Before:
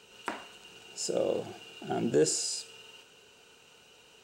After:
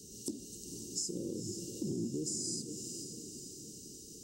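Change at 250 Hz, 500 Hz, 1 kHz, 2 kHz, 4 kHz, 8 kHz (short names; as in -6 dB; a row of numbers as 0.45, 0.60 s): -2.5 dB, -13.5 dB, under -30 dB, under -25 dB, -5.5 dB, -2.0 dB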